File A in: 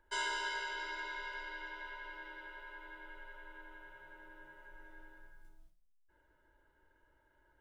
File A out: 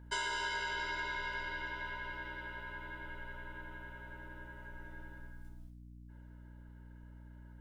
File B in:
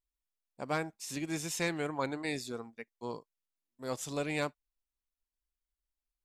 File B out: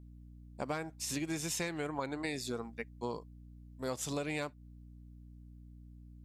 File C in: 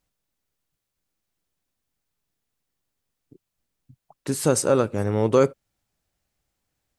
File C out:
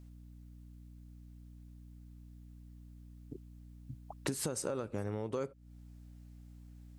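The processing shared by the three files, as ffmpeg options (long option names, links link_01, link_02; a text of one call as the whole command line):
ffmpeg -i in.wav -af "alimiter=limit=-16.5dB:level=0:latency=1:release=498,aeval=exprs='val(0)+0.00158*(sin(2*PI*60*n/s)+sin(2*PI*2*60*n/s)/2+sin(2*PI*3*60*n/s)/3+sin(2*PI*4*60*n/s)/4+sin(2*PI*5*60*n/s)/5)':channel_layout=same,acompressor=threshold=-37dB:ratio=16,volume=4.5dB" out.wav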